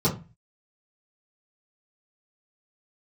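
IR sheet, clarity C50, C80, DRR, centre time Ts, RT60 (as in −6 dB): 11.0 dB, 17.5 dB, −10.0 dB, 17 ms, 0.30 s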